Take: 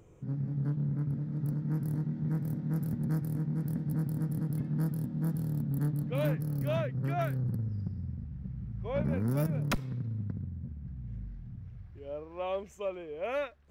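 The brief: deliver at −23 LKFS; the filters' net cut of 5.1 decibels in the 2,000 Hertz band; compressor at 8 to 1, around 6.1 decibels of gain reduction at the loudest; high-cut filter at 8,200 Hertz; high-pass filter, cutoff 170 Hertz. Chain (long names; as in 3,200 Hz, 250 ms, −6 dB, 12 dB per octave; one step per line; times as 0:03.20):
high-pass filter 170 Hz
low-pass filter 8,200 Hz
parametric band 2,000 Hz −7 dB
downward compressor 8 to 1, threshold −35 dBFS
level +18 dB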